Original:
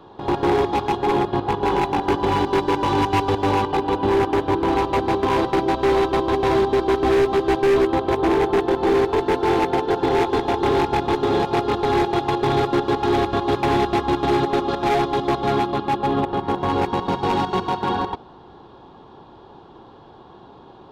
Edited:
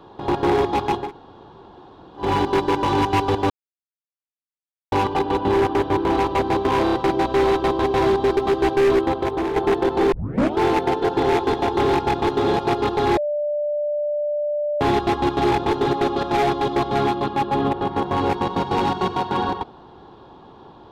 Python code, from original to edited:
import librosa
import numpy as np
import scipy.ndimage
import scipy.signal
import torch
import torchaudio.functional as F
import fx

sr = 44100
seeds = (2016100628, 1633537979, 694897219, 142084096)

y = fx.edit(x, sr, fx.room_tone_fill(start_s=1.04, length_s=1.18, crossfade_s=0.16),
    fx.insert_silence(at_s=3.5, length_s=1.42),
    fx.stutter(start_s=5.42, slice_s=0.03, count=4),
    fx.cut(start_s=6.86, length_s=0.37),
    fx.fade_out_to(start_s=7.87, length_s=0.55, floor_db=-7.5),
    fx.tape_start(start_s=8.98, length_s=0.46),
    fx.duplicate(start_s=10.94, length_s=0.34, to_s=14.38),
    fx.bleep(start_s=12.03, length_s=1.64, hz=591.0, db=-20.0), tone=tone)